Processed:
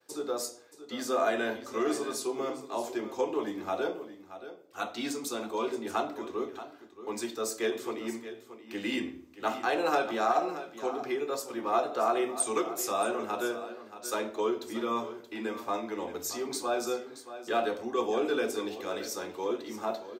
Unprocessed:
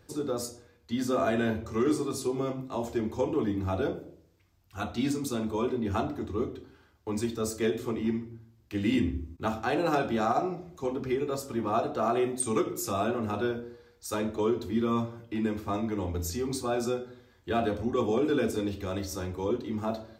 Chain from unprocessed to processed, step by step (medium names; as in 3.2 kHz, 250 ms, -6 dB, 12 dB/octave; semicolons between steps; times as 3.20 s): expander -55 dBFS; high-pass 430 Hz 12 dB/octave; delay 627 ms -13 dB; trim +1.5 dB